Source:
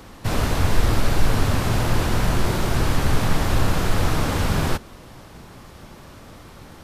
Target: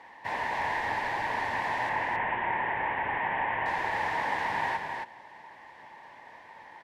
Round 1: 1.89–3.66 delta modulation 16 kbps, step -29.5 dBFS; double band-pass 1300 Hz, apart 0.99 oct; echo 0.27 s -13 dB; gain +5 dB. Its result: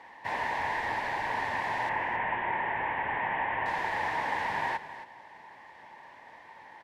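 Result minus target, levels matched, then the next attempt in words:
echo-to-direct -8.5 dB
1.89–3.66 delta modulation 16 kbps, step -29.5 dBFS; double band-pass 1300 Hz, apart 0.99 oct; echo 0.27 s -4.5 dB; gain +5 dB

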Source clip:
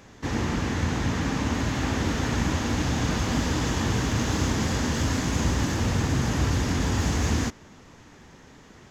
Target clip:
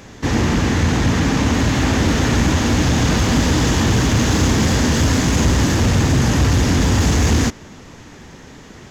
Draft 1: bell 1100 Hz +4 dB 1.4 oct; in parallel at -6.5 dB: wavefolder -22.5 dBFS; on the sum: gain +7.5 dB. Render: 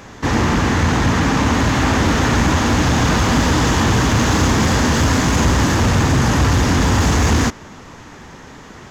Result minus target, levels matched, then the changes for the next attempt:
1000 Hz band +4.5 dB
change: bell 1100 Hz -2.5 dB 1.4 oct

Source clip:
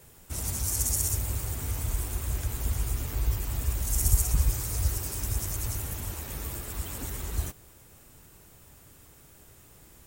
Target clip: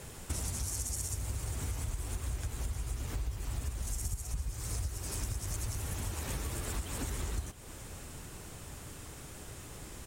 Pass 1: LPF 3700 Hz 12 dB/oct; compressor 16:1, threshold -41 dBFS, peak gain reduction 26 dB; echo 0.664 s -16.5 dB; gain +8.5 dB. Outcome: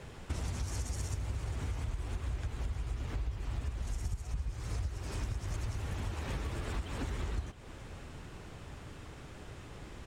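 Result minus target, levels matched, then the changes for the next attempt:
8000 Hz band -10.0 dB
change: LPF 10000 Hz 12 dB/oct

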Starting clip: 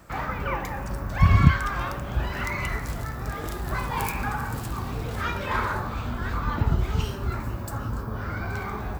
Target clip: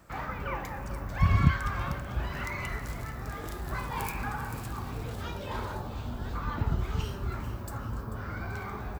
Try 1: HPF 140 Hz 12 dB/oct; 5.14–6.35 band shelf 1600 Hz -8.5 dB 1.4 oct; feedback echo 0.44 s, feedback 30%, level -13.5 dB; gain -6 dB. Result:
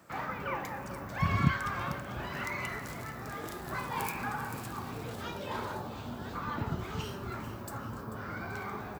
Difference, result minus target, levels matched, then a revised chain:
125 Hz band -3.0 dB
5.14–6.35 band shelf 1600 Hz -8.5 dB 1.4 oct; feedback echo 0.44 s, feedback 30%, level -13.5 dB; gain -6 dB

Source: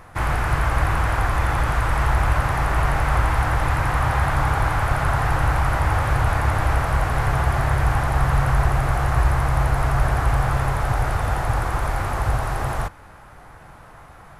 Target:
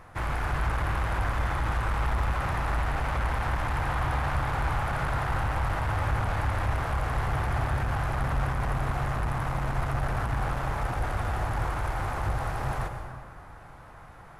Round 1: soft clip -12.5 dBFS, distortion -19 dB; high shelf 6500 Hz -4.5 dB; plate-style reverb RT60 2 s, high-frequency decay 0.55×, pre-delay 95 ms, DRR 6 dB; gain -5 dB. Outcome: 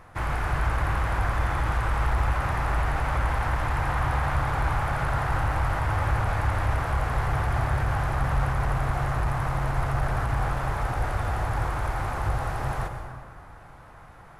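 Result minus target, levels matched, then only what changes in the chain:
soft clip: distortion -7 dB
change: soft clip -19 dBFS, distortion -11 dB

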